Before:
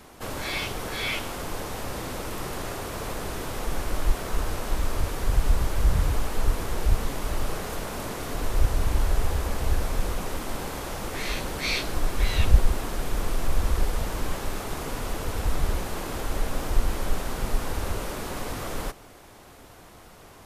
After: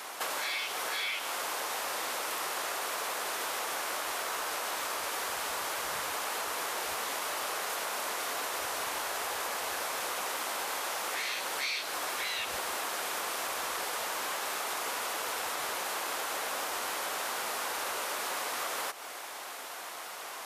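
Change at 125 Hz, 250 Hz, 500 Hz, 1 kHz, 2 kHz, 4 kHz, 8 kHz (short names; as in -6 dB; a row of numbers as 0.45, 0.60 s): -33.5, -15.5, -5.0, +1.0, +1.0, +1.0, +3.0 dB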